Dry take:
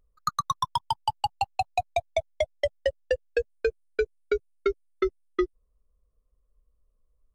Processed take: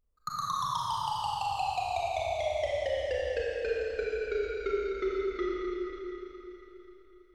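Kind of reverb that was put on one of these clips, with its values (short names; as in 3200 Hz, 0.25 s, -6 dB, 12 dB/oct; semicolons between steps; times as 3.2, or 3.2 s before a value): Schroeder reverb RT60 3.7 s, combs from 28 ms, DRR -7 dB; gain -9.5 dB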